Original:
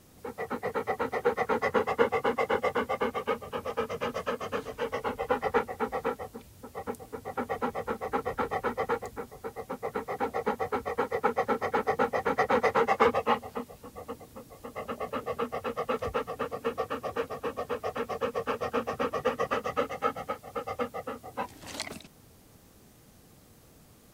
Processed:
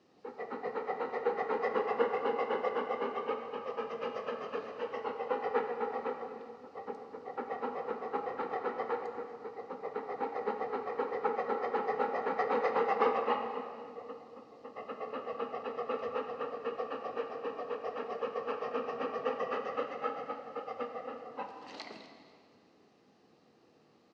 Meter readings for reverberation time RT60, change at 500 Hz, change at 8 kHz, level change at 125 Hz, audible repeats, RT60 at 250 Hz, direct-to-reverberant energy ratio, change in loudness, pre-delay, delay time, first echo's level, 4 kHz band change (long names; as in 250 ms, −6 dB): 2.2 s, −4.0 dB, below −15 dB, below −10 dB, 1, 2.7 s, 4.0 dB, −5.0 dB, 9 ms, 241 ms, −18.0 dB, −8.0 dB